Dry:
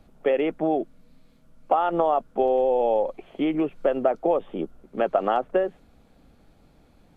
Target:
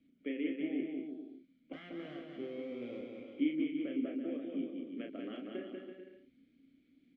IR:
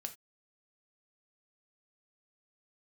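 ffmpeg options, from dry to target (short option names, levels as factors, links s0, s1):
-filter_complex "[0:a]asettb=1/sr,asplit=3[s0][s1][s2];[s0]atrim=end=1.734[s3];[s1]atrim=start=1.73:end=3.01,asetpts=PTS-STARTPTS,afade=t=in:d=0.004:c=qsin,afade=t=out:st=1.276:d=0.004:c=qsin,aeval=exprs='if(lt(val(0),0),0.447*val(0),val(0))':c=same[s4];[s2]atrim=start=3.006[s5];[s3][s4]acrossfade=d=0.004:c1=hsin:c2=qsin[s6];[s6][s5]acrossfade=d=0.004:c1=qsin:c2=hsin,asplit=3[s7][s8][s9];[s7]bandpass=f=270:t=q:w=8,volume=1[s10];[s8]bandpass=f=2290:t=q:w=8,volume=0.501[s11];[s9]bandpass=f=3010:t=q:w=8,volume=0.355[s12];[s10][s11][s12]amix=inputs=3:normalize=0,asplit=2[s13][s14];[s14]adelay=33,volume=0.596[s15];[s13][s15]amix=inputs=2:normalize=0,asplit=2[s16][s17];[s17]aecho=0:1:190|332.5|439.4|519.5|579.6:0.631|0.398|0.251|0.158|0.1[s18];[s16][s18]amix=inputs=2:normalize=0,volume=0.75"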